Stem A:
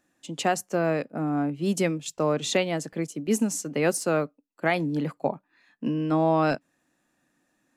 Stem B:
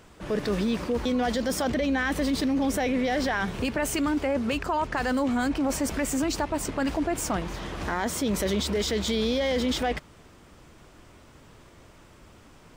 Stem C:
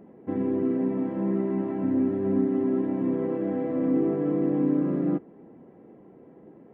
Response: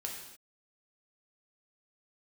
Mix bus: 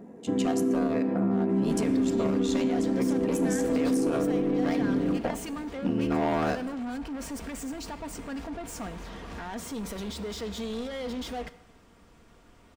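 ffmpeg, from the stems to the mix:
-filter_complex "[0:a]asoftclip=type=hard:threshold=-21.5dB,aeval=exprs='val(0)*sin(2*PI*39*n/s)':channel_layout=same,volume=0.5dB,asplit=2[link_01][link_02];[link_02]volume=-10dB[link_03];[1:a]asoftclip=type=tanh:threshold=-27.5dB,adelay=1500,volume=-7dB,asplit=2[link_04][link_05];[link_05]volume=-10dB[link_06];[2:a]volume=0.5dB,asplit=2[link_07][link_08];[link_08]volume=-9dB[link_09];[link_01][link_07]amix=inputs=2:normalize=0,alimiter=limit=-19.5dB:level=0:latency=1:release=106,volume=0dB[link_10];[3:a]atrim=start_sample=2205[link_11];[link_03][link_06][link_09]amix=inputs=3:normalize=0[link_12];[link_12][link_11]afir=irnorm=-1:irlink=0[link_13];[link_04][link_10][link_13]amix=inputs=3:normalize=0,equalizer=frequency=10000:width_type=o:width=3:gain=-2.5,aecho=1:1:4.3:0.36,alimiter=limit=-18dB:level=0:latency=1:release=65"

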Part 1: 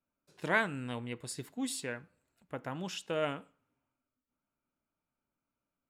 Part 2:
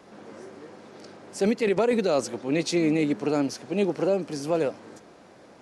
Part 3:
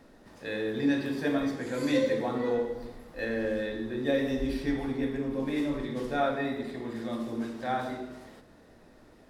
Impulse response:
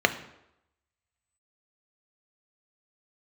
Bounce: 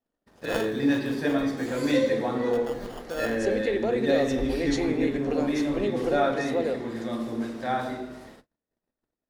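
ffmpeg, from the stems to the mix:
-filter_complex "[0:a]acrusher=samples=22:mix=1:aa=0.000001,volume=-6dB,asplit=2[link_01][link_02];[link_02]volume=-12.5dB[link_03];[1:a]acompressor=threshold=-25dB:ratio=6,adelay=2050,volume=-10.5dB,asplit=2[link_04][link_05];[link_05]volume=-5.5dB[link_06];[2:a]agate=range=-38dB:threshold=-50dB:ratio=16:detection=peak,volume=3dB[link_07];[3:a]atrim=start_sample=2205[link_08];[link_03][link_06]amix=inputs=2:normalize=0[link_09];[link_09][link_08]afir=irnorm=-1:irlink=0[link_10];[link_01][link_04][link_07][link_10]amix=inputs=4:normalize=0"

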